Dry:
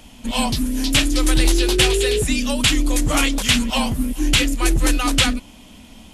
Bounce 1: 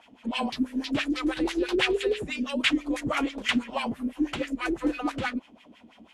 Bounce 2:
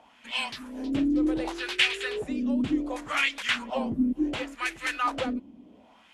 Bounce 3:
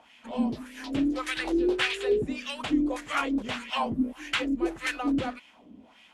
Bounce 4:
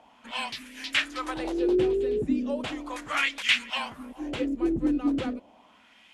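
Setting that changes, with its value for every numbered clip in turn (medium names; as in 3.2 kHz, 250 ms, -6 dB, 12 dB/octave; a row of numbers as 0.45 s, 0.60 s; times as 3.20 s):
wah-wah, rate: 6.1 Hz, 0.68 Hz, 1.7 Hz, 0.36 Hz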